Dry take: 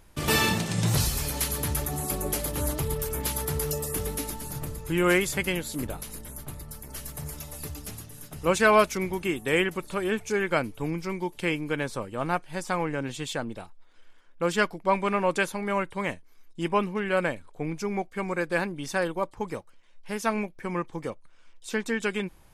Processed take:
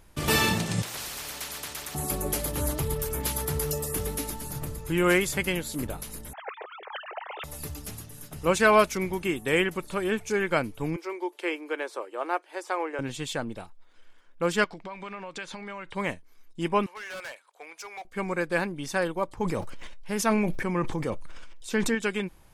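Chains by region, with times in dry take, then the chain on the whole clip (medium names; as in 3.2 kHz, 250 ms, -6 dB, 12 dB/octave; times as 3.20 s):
0.82–1.95 s: three-band isolator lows -14 dB, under 470 Hz, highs -17 dB, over 4.7 kHz + spectrum-flattening compressor 4:1
6.33–7.44 s: formants replaced by sine waves + elliptic high-pass 410 Hz
10.96–12.99 s: elliptic high-pass 340 Hz, stop band 60 dB + treble shelf 3.6 kHz -7 dB
14.64–15.95 s: low-pass 8.8 kHz 24 dB/octave + compression 20:1, threshold -36 dBFS + FFT filter 390 Hz 0 dB, 3.8 kHz +8 dB, 13 kHz -5 dB
16.86–18.05 s: Bessel high-pass 890 Hz, order 4 + overload inside the chain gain 35.5 dB
19.28–21.95 s: bass shelf 340 Hz +4 dB + decay stretcher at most 22 dB/s
whole clip: none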